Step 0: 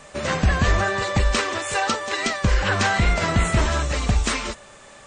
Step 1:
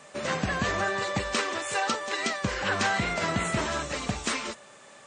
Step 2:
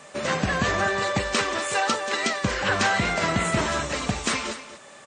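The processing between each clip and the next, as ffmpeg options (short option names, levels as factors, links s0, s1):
-af "highpass=150,volume=0.562"
-af "aecho=1:1:240:0.211,volume=1.58"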